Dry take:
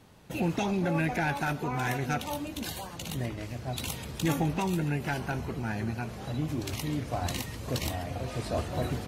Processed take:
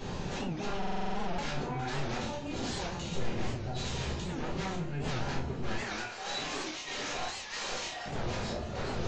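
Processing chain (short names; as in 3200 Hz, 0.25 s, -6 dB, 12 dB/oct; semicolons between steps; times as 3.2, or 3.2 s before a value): 5.76–8.06 HPF 980 Hz 12 dB/oct; compressor 5:1, threshold -43 dBFS, peak gain reduction 18 dB; soft clip -40 dBFS, distortion -15 dB; chopper 1.6 Hz, depth 65%, duty 60%; sine folder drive 8 dB, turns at -40 dBFS; flutter echo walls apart 6 m, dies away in 0.21 s; reverb RT60 0.45 s, pre-delay 5 ms, DRR -6 dB; downsampling 16000 Hz; stuck buffer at 0.78, samples 2048, times 12; record warp 78 rpm, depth 160 cents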